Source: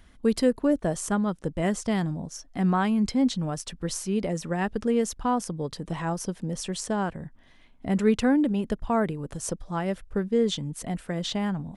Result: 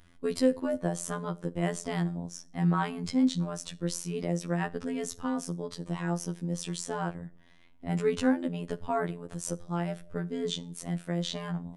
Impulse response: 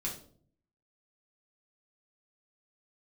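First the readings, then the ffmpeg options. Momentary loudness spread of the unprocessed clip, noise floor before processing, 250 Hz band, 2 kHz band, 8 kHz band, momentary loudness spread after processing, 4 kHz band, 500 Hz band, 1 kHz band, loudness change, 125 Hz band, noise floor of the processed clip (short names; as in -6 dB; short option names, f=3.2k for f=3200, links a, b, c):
10 LU, -54 dBFS, -5.5 dB, -4.0 dB, -3.5 dB, 9 LU, -3.5 dB, -5.0 dB, -5.5 dB, -4.5 dB, -2.0 dB, -55 dBFS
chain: -filter_complex "[0:a]asplit=2[a][b];[1:a]atrim=start_sample=2205,lowshelf=f=180:g=-12[c];[b][c]afir=irnorm=-1:irlink=0,volume=-14.5dB[d];[a][d]amix=inputs=2:normalize=0,afftfilt=real='hypot(re,im)*cos(PI*b)':imag='0':win_size=2048:overlap=0.75,volume=-1.5dB"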